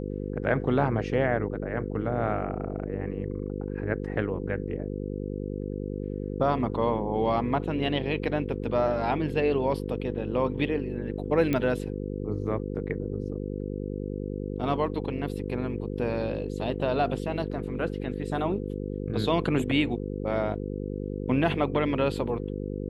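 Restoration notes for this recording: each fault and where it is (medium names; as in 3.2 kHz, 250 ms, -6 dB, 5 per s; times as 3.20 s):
buzz 50 Hz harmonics 10 -33 dBFS
11.53 s: pop -14 dBFS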